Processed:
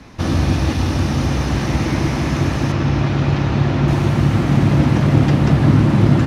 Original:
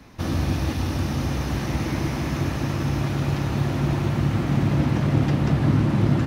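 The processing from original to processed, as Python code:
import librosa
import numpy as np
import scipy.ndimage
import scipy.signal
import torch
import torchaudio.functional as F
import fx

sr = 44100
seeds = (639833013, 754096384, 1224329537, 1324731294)

y = fx.lowpass(x, sr, hz=fx.steps((0.0, 9500.0), (2.72, 4800.0), (3.88, 12000.0)), slope=12)
y = F.gain(torch.from_numpy(y), 7.0).numpy()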